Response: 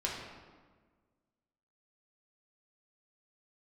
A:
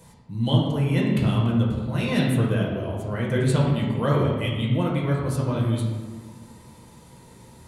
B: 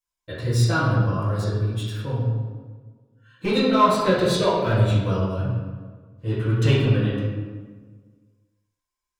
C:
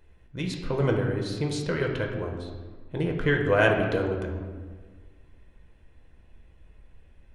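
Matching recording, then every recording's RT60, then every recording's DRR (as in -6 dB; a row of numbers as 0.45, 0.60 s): A; 1.5, 1.5, 1.5 s; -4.0, -11.0, 1.0 dB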